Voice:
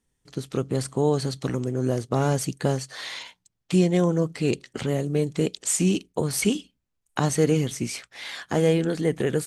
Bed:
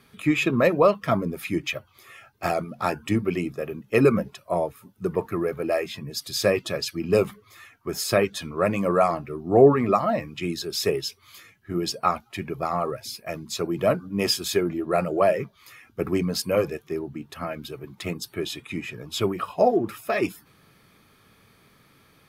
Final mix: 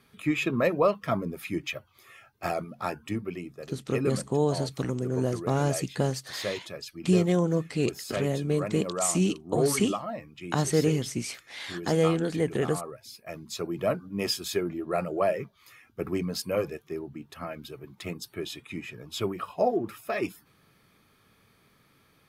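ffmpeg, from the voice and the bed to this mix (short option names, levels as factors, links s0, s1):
-filter_complex "[0:a]adelay=3350,volume=0.708[s0];[1:a]volume=1.12,afade=t=out:st=2.63:d=0.84:silence=0.473151,afade=t=in:st=13.03:d=0.43:silence=0.501187[s1];[s0][s1]amix=inputs=2:normalize=0"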